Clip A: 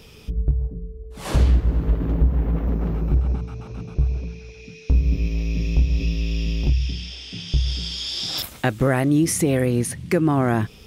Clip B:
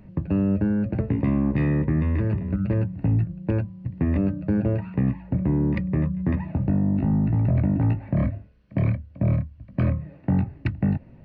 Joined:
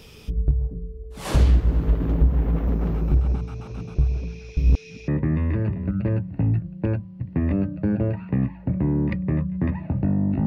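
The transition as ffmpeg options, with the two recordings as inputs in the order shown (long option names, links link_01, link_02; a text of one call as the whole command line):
ffmpeg -i cue0.wav -i cue1.wav -filter_complex "[0:a]apad=whole_dur=10.46,atrim=end=10.46,asplit=2[link_01][link_02];[link_01]atrim=end=4.572[link_03];[link_02]atrim=start=4.568:end=5.082,asetpts=PTS-STARTPTS,areverse[link_04];[1:a]atrim=start=1.728:end=7.11[link_05];[link_03][link_04]acrossfade=duration=0.004:curve1=hsin:curve2=hsin[link_06];[link_06][link_05]acrossfade=duration=0.004:curve1=hsin:curve2=hsin" out.wav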